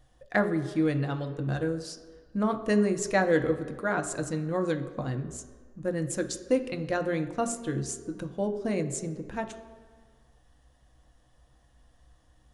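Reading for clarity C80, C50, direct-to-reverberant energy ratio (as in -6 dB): 13.0 dB, 11.0 dB, 6.0 dB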